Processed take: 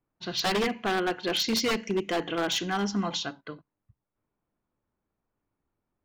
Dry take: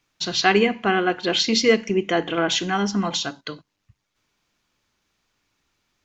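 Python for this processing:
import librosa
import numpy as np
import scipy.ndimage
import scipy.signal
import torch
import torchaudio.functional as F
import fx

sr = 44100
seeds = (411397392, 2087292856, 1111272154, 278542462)

y = fx.env_lowpass(x, sr, base_hz=850.0, full_db=-17.5)
y = 10.0 ** (-14.5 / 20.0) * (np.abs((y / 10.0 ** (-14.5 / 20.0) + 3.0) % 4.0 - 2.0) - 1.0)
y = y * librosa.db_to_amplitude(-5.5)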